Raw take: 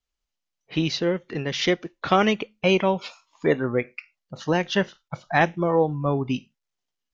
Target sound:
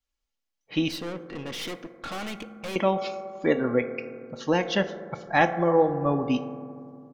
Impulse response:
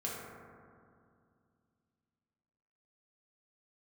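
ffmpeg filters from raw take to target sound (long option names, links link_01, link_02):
-filter_complex "[0:a]aecho=1:1:3.6:0.42,asettb=1/sr,asplit=3[link_01][link_02][link_03];[link_01]atrim=end=0.884[link_04];[link_02]atrim=start=0.88:end=2.76,asetpts=PTS-STARTPTS,afade=type=in:duration=0.004:curve=qsin,afade=type=out:start_time=1.876:duration=0.004:curve=qsin,aeval=exprs='(tanh(31.6*val(0)+0.5)-tanh(0.5))/31.6':channel_layout=same[link_05];[link_03]atrim=start=2.756[link_06];[link_04][link_05]acrossfade=duration=0.004:curve1=hsin:curve2=qsin[link_07];[link_07][link_06]acrossfade=duration=0.004:curve1=qsin:curve2=hsin,asplit=2[link_08][link_09];[link_09]adynamicequalizer=threshold=0.0251:dfrequency=670:dqfactor=0.84:tfrequency=670:tqfactor=0.84:attack=5:release=100:ratio=0.375:range=3:mode=boostabove:tftype=bell[link_10];[1:a]atrim=start_sample=2205[link_11];[link_10][link_11]afir=irnorm=-1:irlink=0,volume=-12.5dB[link_12];[link_08][link_12]amix=inputs=2:normalize=0,volume=-3.5dB"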